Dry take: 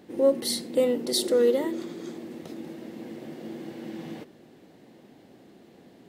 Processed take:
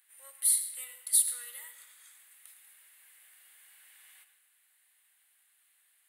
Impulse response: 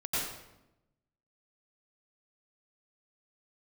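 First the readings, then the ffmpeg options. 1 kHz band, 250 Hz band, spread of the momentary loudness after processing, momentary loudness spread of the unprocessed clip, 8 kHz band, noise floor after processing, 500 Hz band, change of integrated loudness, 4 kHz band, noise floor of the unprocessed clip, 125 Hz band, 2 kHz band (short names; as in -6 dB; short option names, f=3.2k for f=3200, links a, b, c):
under -20 dB, under -40 dB, 17 LU, 18 LU, +8.5 dB, -70 dBFS, under -40 dB, -1.0 dB, -11.5 dB, -54 dBFS, under -40 dB, -8.5 dB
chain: -filter_complex "[0:a]highpass=f=1.5k:w=0.5412,highpass=f=1.5k:w=1.3066,highshelf=f=7.4k:t=q:w=3:g=11.5,asplit=2[a][b];[1:a]atrim=start_sample=2205,asetrate=48510,aresample=44100[c];[b][c]afir=irnorm=-1:irlink=0,volume=-13.5dB[d];[a][d]amix=inputs=2:normalize=0,volume=-8.5dB"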